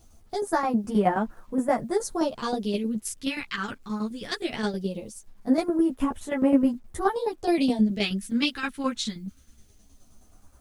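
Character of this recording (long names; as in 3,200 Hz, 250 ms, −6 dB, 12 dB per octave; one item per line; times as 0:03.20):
phaser sweep stages 2, 0.2 Hz, lowest notch 640–4,000 Hz
tremolo saw down 9.5 Hz, depth 70%
a quantiser's noise floor 12 bits, dither none
a shimmering, thickened sound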